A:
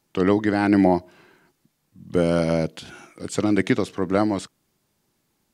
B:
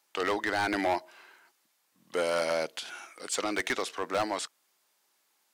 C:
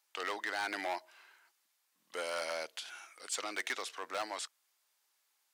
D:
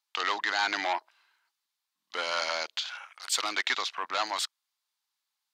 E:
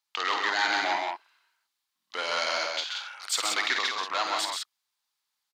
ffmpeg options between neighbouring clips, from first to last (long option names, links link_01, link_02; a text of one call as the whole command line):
ffmpeg -i in.wav -af "highpass=760,asoftclip=type=hard:threshold=-24dB,volume=1.5dB" out.wav
ffmpeg -i in.wav -af "highpass=frequency=1000:poles=1,volume=-4.5dB" out.wav
ffmpeg -i in.wav -af "equalizer=frequency=500:width_type=o:width=1:gain=-6,equalizer=frequency=1000:width_type=o:width=1:gain=6,equalizer=frequency=4000:width_type=o:width=1:gain=8,afwtdn=0.00398,volume=5.5dB" out.wav
ffmpeg -i in.wav -af "aecho=1:1:52.48|131.2|177.8:0.398|0.562|0.562" out.wav